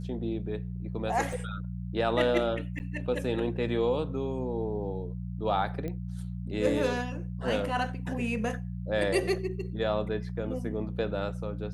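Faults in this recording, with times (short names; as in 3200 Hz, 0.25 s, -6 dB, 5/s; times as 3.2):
hum 60 Hz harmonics 3 -36 dBFS
1.33 gap 3.5 ms
2.79–2.8 gap 9.6 ms
5.88 pop -24 dBFS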